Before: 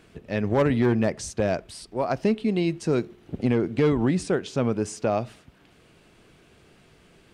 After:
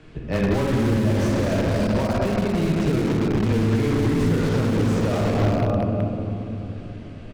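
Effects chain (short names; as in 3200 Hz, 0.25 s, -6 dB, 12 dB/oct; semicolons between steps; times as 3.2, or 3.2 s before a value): air absorption 84 m; loudspeakers at several distances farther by 17 m -9 dB, 69 m -9 dB, 89 m -8 dB; reverb RT60 3.4 s, pre-delay 6 ms, DRR -2.5 dB; 1.7–3.52 transient shaper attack +9 dB, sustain -7 dB; frequency shift -14 Hz; in parallel at -6 dB: wrapped overs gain 18.5 dB; on the sum: limiter -15.5 dBFS, peak gain reduction 13.5 dB; low shelf 120 Hz +10.5 dB; slew limiter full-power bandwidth 110 Hz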